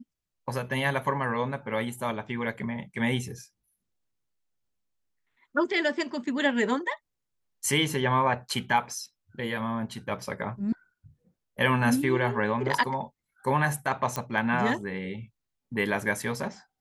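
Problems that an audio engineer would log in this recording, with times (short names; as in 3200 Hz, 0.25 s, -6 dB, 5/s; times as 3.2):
14.16 pop -13 dBFS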